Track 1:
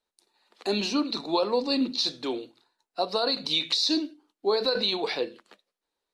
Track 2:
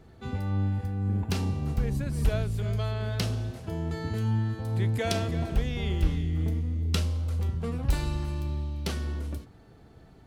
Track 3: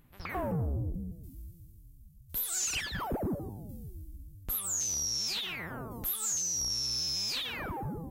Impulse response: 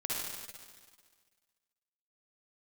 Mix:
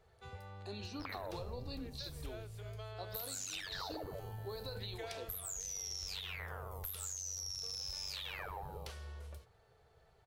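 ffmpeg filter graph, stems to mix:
-filter_complex "[0:a]volume=0.112[s0];[1:a]volume=0.2[s1];[2:a]agate=range=0.0224:threshold=0.00562:ratio=3:detection=peak,tremolo=f=95:d=0.919,adelay=800,volume=1.19[s2];[s1][s2]amix=inputs=2:normalize=0,firequalizer=gain_entry='entry(100,0);entry(270,-20);entry(430,5)':delay=0.05:min_phase=1,acompressor=threshold=0.00562:ratio=2,volume=1[s3];[s0][s3]amix=inputs=2:normalize=0,bandreject=f=50:t=h:w=6,bandreject=f=100:t=h:w=6,acompressor=threshold=0.0112:ratio=6"

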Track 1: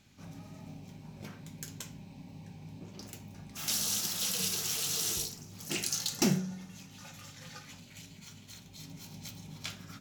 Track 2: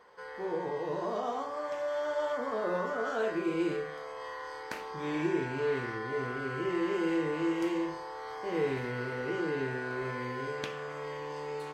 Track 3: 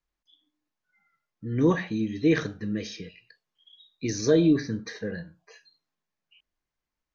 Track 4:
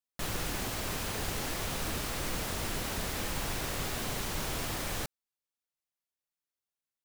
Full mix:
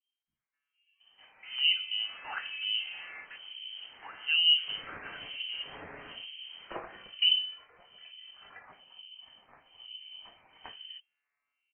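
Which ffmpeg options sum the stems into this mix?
-filter_complex "[0:a]adelay=1000,volume=1.41[s0];[1:a]adelay=350,volume=0.501[s1];[2:a]lowpass=f=2500:w=0.5412,lowpass=f=2500:w=1.3066,volume=0.708,asplit=2[s2][s3];[3:a]adelay=1900,volume=0.237[s4];[s3]apad=whole_len=532886[s5];[s1][s5]sidechaingate=range=0.0224:threshold=0.001:ratio=16:detection=peak[s6];[s0][s6][s2][s4]amix=inputs=4:normalize=0,acrossover=split=870[s7][s8];[s7]aeval=exprs='val(0)*(1-1/2+1/2*cos(2*PI*1.1*n/s))':c=same[s9];[s8]aeval=exprs='val(0)*(1-1/2-1/2*cos(2*PI*1.1*n/s))':c=same[s10];[s9][s10]amix=inputs=2:normalize=0,lowpass=f=2700:t=q:w=0.5098,lowpass=f=2700:t=q:w=0.6013,lowpass=f=2700:t=q:w=0.9,lowpass=f=2700:t=q:w=2.563,afreqshift=-3200"

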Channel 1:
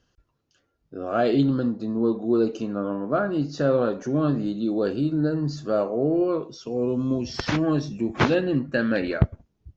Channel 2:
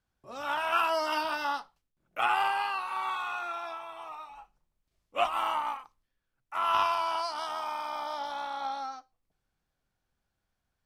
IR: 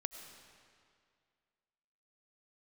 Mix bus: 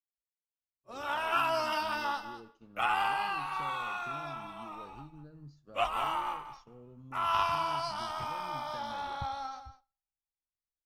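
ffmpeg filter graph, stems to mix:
-filter_complex "[0:a]acompressor=threshold=0.0282:ratio=4,volume=0.133[s0];[1:a]adelay=600,volume=0.708,asplit=3[s1][s2][s3];[s2]volume=0.141[s4];[s3]volume=0.299[s5];[2:a]atrim=start_sample=2205[s6];[s4][s6]afir=irnorm=-1:irlink=0[s7];[s5]aecho=0:1:202|404|606:1|0.15|0.0225[s8];[s0][s1][s7][s8]amix=inputs=4:normalize=0,agate=range=0.0224:threshold=0.00447:ratio=3:detection=peak,asubboost=boost=4.5:cutoff=130"

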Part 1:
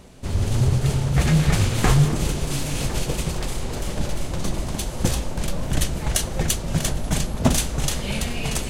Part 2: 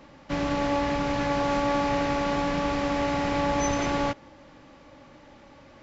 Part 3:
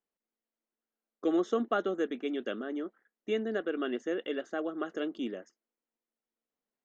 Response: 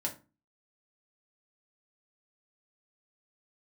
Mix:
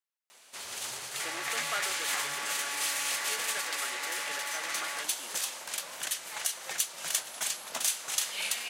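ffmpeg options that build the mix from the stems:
-filter_complex "[0:a]highshelf=f=8700:g=5.5,alimiter=limit=0.282:level=0:latency=1:release=220,adelay=300,volume=0.794[s0];[1:a]equalizer=f=1900:t=o:w=1:g=10.5,asoftclip=type=tanh:threshold=0.0376,adelay=900,volume=0.708[s1];[2:a]volume=1[s2];[s0][s1][s2]amix=inputs=3:normalize=0,highpass=1200"

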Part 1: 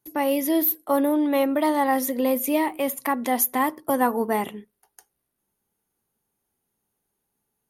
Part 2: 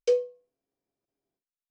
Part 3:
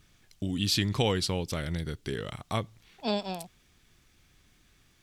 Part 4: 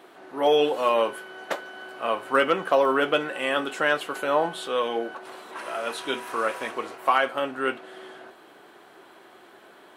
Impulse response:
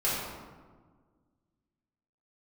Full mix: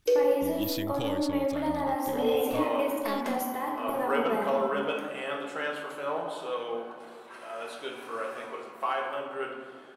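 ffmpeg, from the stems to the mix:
-filter_complex "[0:a]acompressor=threshold=0.0447:ratio=6,highshelf=f=4600:g=-7,volume=0.398,asplit=2[s0][s1];[s1]volume=0.668[s2];[1:a]alimiter=level_in=1.06:limit=0.0631:level=0:latency=1,volume=0.944,volume=1.12,asplit=2[s3][s4];[s4]volume=0.631[s5];[2:a]aeval=exprs='if(lt(val(0),0),0.447*val(0),val(0))':c=same,volume=0.473[s6];[3:a]adelay=1750,volume=0.188,asplit=2[s7][s8];[s8]volume=0.447[s9];[4:a]atrim=start_sample=2205[s10];[s2][s5][s9]amix=inputs=3:normalize=0[s11];[s11][s10]afir=irnorm=-1:irlink=0[s12];[s0][s3][s6][s7][s12]amix=inputs=5:normalize=0"

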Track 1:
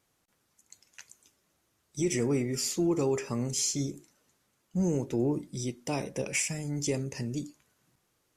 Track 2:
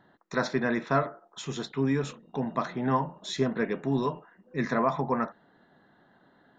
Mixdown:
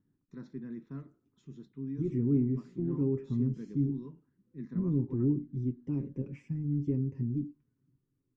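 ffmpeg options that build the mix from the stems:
-filter_complex "[0:a]lowpass=1700,aecho=1:1:7.5:0.59,volume=0.944[s0];[1:a]volume=0.282[s1];[s0][s1]amix=inputs=2:normalize=0,firequalizer=gain_entry='entry(300,0);entry(640,-29);entry(980,-21)':delay=0.05:min_phase=1"

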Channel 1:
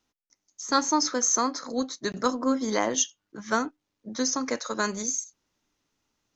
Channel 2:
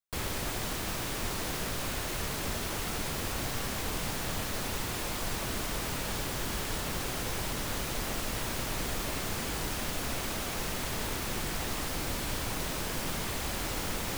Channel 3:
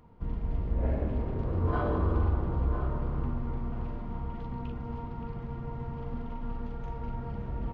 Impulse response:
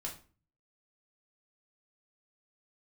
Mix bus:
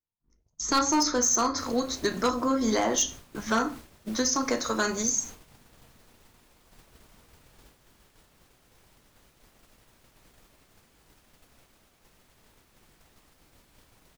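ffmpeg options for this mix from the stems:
-filter_complex "[0:a]volume=1.33,asplit=2[s0][s1];[s1]volume=0.596[s2];[1:a]adelay=1450,volume=0.224[s3];[2:a]aeval=exprs='(tanh(70.8*val(0)+0.25)-tanh(0.25))/70.8':c=same,asplit=2[s4][s5];[s5]afreqshift=2.6[s6];[s4][s6]amix=inputs=2:normalize=1,volume=0.316,asplit=2[s7][s8];[s8]volume=0.376[s9];[s0][s3]amix=inputs=2:normalize=0,acompressor=threshold=0.0447:ratio=5,volume=1[s10];[3:a]atrim=start_sample=2205[s11];[s2][s9]amix=inputs=2:normalize=0[s12];[s12][s11]afir=irnorm=-1:irlink=0[s13];[s7][s10][s13]amix=inputs=3:normalize=0,agate=range=0.0224:threshold=0.0158:ratio=3:detection=peak,asoftclip=type=hard:threshold=0.133"

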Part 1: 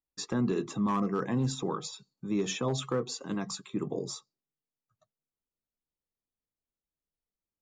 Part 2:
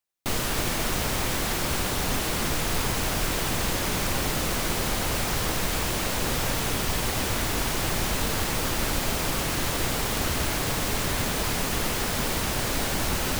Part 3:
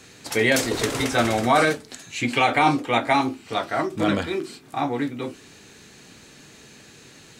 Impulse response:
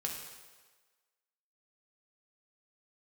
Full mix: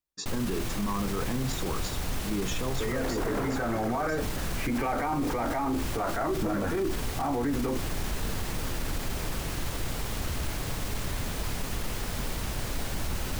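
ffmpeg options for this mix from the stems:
-filter_complex "[0:a]volume=1.06[s0];[1:a]lowshelf=f=120:g=10.5,volume=0.355[s1];[2:a]lowpass=f=1700:w=0.5412,lowpass=f=1700:w=1.3066,alimiter=limit=0.112:level=0:latency=1:release=14,dynaudnorm=f=300:g=5:m=3.55,adelay=2450,volume=0.631[s2];[s0][s1][s2]amix=inputs=3:normalize=0,alimiter=limit=0.0841:level=0:latency=1:release=12"

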